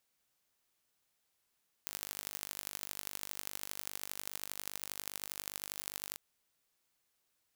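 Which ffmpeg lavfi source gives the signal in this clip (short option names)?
-f lavfi -i "aevalsrc='0.282*eq(mod(n,884),0)*(0.5+0.5*eq(mod(n,3536),0))':d=4.29:s=44100"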